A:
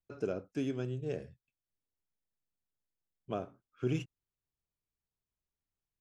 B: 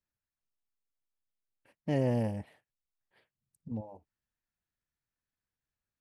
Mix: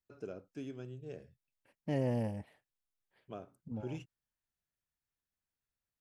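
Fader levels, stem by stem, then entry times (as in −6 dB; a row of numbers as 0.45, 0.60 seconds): −9.0, −4.0 decibels; 0.00, 0.00 seconds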